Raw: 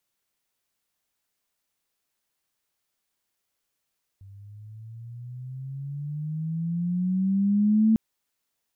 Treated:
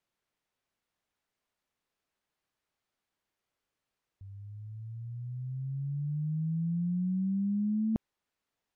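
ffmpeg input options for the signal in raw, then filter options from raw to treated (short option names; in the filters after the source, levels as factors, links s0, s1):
-f lavfi -i "aevalsrc='pow(10,(-15.5+28*(t/3.75-1))/20)*sin(2*PI*96.7*3.75/(14.5*log(2)/12)*(exp(14.5*log(2)/12*t/3.75)-1))':d=3.75:s=44100"
-af "aemphasis=mode=reproduction:type=75kf,areverse,acompressor=threshold=0.0355:ratio=6,areverse"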